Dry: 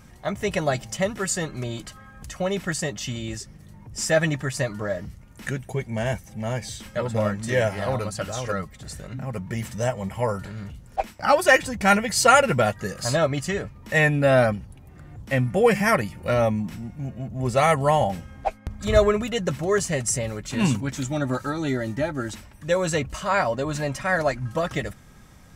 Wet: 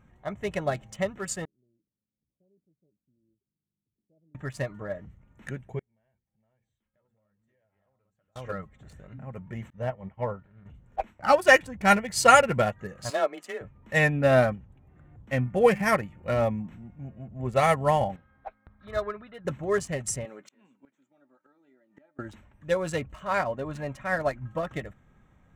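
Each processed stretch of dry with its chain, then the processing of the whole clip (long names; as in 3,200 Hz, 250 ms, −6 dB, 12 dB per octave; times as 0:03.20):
0:01.45–0:04.35: inverse Chebyshev low-pass filter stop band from 1,600 Hz, stop band 70 dB + first difference
0:05.79–0:08.36: mains-hum notches 60/120/180/240/300/360/420/480 Hz + downward compressor 10 to 1, threshold −27 dBFS + gate with flip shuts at −34 dBFS, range −32 dB
0:09.70–0:10.66: downward expander −28 dBFS + high-frequency loss of the air 160 metres
0:13.10–0:13.61: high-pass filter 290 Hz 24 dB per octave + frequency shifter +27 Hz
0:18.16–0:19.45: Chebyshev low-pass with heavy ripple 5,400 Hz, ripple 9 dB + low-shelf EQ 160 Hz −4.5 dB
0:20.25–0:22.19: high-pass filter 230 Hz 24 dB per octave + hum removal 303.2 Hz, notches 38 + gate with flip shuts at −23 dBFS, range −26 dB
whole clip: adaptive Wiener filter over 9 samples; expander for the loud parts 1.5 to 1, over −32 dBFS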